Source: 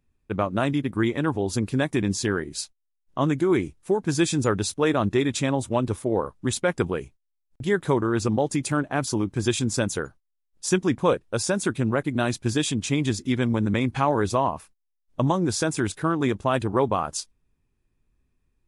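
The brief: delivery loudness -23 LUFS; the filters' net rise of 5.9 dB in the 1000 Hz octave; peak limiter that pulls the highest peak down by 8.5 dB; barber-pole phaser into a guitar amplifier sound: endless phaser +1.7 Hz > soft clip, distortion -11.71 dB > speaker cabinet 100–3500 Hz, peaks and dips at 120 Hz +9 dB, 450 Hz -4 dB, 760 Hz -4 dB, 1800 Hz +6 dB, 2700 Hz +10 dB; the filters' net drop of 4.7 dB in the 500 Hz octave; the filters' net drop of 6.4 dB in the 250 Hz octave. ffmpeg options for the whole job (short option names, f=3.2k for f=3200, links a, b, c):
-filter_complex "[0:a]equalizer=f=250:t=o:g=-8.5,equalizer=f=500:t=o:g=-3,equalizer=f=1k:t=o:g=9,alimiter=limit=-11.5dB:level=0:latency=1,asplit=2[a][b];[b]afreqshift=1.7[c];[a][c]amix=inputs=2:normalize=1,asoftclip=threshold=-22.5dB,highpass=100,equalizer=f=120:t=q:w=4:g=9,equalizer=f=450:t=q:w=4:g=-4,equalizer=f=760:t=q:w=4:g=-4,equalizer=f=1.8k:t=q:w=4:g=6,equalizer=f=2.7k:t=q:w=4:g=10,lowpass=f=3.5k:w=0.5412,lowpass=f=3.5k:w=1.3066,volume=7.5dB"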